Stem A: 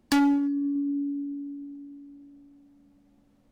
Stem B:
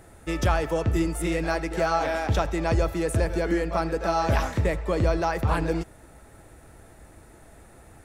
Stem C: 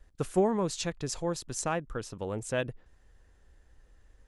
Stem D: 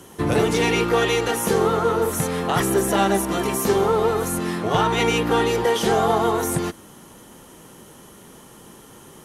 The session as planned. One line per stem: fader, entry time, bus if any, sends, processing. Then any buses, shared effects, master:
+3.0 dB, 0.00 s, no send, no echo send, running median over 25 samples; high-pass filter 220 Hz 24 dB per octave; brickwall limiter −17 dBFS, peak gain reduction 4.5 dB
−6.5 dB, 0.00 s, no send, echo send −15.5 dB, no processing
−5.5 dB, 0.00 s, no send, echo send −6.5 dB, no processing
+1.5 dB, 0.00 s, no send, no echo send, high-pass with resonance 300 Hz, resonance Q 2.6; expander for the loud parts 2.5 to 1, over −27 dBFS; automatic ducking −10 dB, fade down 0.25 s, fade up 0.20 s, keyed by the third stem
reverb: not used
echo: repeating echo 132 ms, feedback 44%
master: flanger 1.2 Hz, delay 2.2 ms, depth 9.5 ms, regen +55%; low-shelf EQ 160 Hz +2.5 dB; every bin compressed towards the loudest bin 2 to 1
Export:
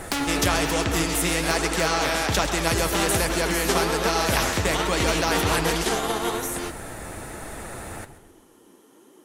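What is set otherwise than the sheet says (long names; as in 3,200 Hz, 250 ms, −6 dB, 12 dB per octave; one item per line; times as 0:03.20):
stem B −6.5 dB → +5.5 dB
stem C −5.5 dB → −14.0 dB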